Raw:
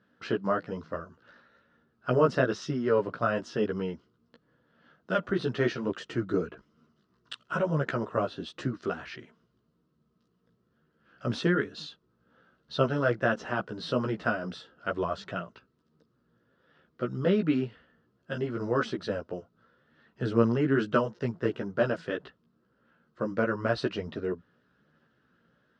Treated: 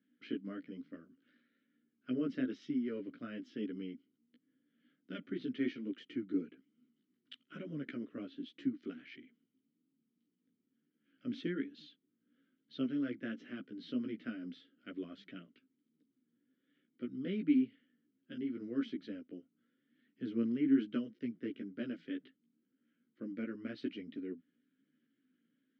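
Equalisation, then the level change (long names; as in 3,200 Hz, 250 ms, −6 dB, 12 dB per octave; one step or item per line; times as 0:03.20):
formant filter i
high-pass filter 110 Hz
parametric band 3,000 Hz −2 dB
+2.0 dB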